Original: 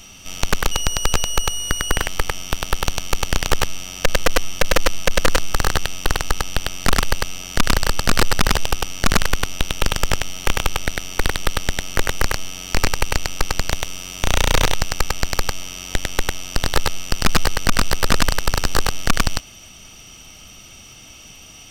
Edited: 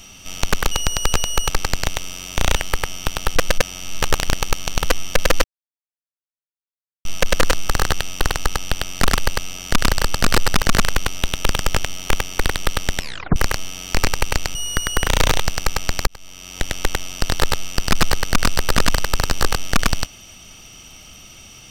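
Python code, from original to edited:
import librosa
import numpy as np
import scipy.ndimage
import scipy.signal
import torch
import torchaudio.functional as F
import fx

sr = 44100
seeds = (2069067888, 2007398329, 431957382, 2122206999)

y = fx.edit(x, sr, fx.swap(start_s=1.49, length_s=0.53, other_s=13.35, other_length_s=1.07),
    fx.reverse_span(start_s=2.82, length_s=1.48),
    fx.insert_silence(at_s=4.9, length_s=1.61),
    fx.cut(start_s=8.47, length_s=0.52),
    fx.cut(start_s=10.59, length_s=0.43),
    fx.tape_stop(start_s=11.79, length_s=0.37),
    fx.fade_in_span(start_s=15.41, length_s=0.65), tone=tone)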